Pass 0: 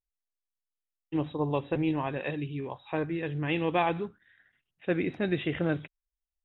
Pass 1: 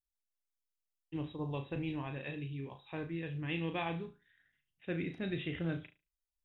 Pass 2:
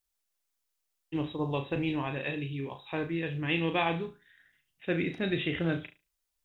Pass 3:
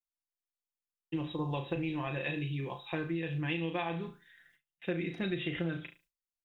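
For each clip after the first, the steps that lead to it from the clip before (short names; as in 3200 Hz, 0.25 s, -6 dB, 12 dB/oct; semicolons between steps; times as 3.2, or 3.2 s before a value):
bell 720 Hz -10 dB 3 oct; on a send: flutter echo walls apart 6.2 m, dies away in 0.27 s; on the sum: gain -3.5 dB
tone controls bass -5 dB, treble +2 dB; gain +9 dB
gate with hold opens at -56 dBFS; comb 5.8 ms, depth 58%; compressor, threshold -31 dBFS, peak gain reduction 11 dB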